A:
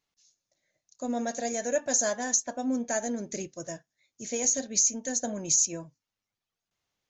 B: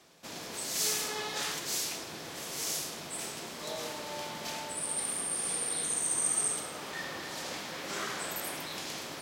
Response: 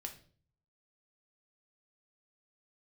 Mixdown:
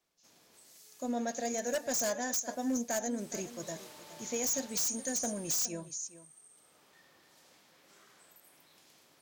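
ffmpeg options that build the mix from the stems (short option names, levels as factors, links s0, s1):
-filter_complex "[0:a]adynamicequalizer=threshold=0.0224:dfrequency=6200:dqfactor=1.1:tfrequency=6200:tqfactor=1.1:attack=5:release=100:ratio=0.375:range=1.5:mode=boostabove:tftype=bell,volume=0.668,asplit=2[s0][s1];[s1]volume=0.168[s2];[1:a]highshelf=f=10000:g=9.5,acompressor=threshold=0.0224:ratio=4,volume=0.237,afade=t=in:st=3.12:d=0.36:silence=0.298538,afade=t=out:st=5.31:d=0.43:silence=0.266073[s3];[s2]aecho=0:1:417:1[s4];[s0][s3][s4]amix=inputs=3:normalize=0,aeval=exprs='0.0501*(abs(mod(val(0)/0.0501+3,4)-2)-1)':c=same"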